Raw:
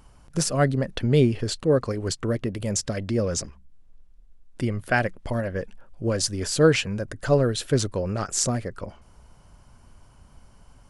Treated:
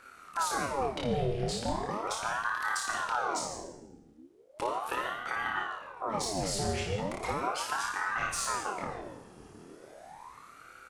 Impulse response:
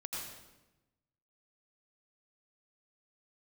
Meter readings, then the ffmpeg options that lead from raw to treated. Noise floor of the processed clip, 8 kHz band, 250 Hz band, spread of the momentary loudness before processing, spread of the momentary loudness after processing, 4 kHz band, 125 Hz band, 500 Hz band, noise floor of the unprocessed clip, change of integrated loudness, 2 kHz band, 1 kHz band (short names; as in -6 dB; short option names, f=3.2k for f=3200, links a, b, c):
-55 dBFS, -8.0 dB, -13.5 dB, 11 LU, 19 LU, -7.0 dB, -15.0 dB, -11.5 dB, -53 dBFS, -8.0 dB, -2.0 dB, +3.0 dB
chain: -filter_complex "[0:a]asplit=2[a][b];[b]adelay=25,volume=-3.5dB[c];[a][c]amix=inputs=2:normalize=0,acompressor=threshold=-31dB:ratio=2,asoftclip=type=tanh:threshold=-20.5dB,acrossover=split=200[d][e];[e]acompressor=threshold=-32dB:ratio=6[f];[d][f]amix=inputs=2:normalize=0,highpass=f=42:p=1,aecho=1:1:31|56:0.376|0.447,asplit=2[g][h];[1:a]atrim=start_sample=2205[i];[h][i]afir=irnorm=-1:irlink=0,volume=-1dB[j];[g][j]amix=inputs=2:normalize=0,aeval=exprs='val(0)*sin(2*PI*820*n/s+820*0.7/0.37*sin(2*PI*0.37*n/s))':c=same,volume=-2.5dB"